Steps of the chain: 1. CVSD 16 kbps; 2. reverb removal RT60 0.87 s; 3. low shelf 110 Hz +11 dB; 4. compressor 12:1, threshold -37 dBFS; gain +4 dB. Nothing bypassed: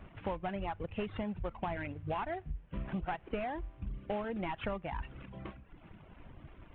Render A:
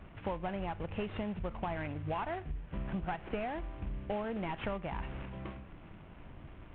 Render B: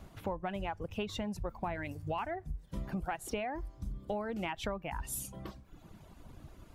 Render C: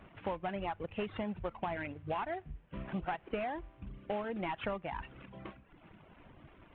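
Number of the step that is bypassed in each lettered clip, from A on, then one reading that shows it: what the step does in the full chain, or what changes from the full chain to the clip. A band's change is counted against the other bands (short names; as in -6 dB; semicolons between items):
2, momentary loudness spread change -2 LU; 1, 4 kHz band +5.0 dB; 3, 125 Hz band -4.0 dB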